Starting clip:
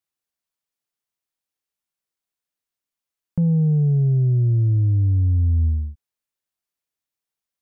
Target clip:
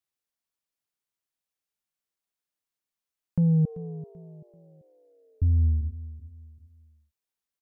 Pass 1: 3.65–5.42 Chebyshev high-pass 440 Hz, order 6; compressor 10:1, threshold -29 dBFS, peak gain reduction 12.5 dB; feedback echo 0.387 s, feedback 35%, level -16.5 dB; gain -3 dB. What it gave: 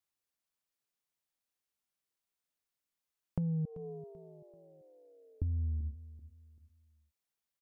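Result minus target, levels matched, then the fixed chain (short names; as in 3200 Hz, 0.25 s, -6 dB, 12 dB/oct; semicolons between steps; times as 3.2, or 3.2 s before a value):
compressor: peak gain reduction +12.5 dB
3.65–5.42 Chebyshev high-pass 440 Hz, order 6; feedback echo 0.387 s, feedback 35%, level -16.5 dB; gain -3 dB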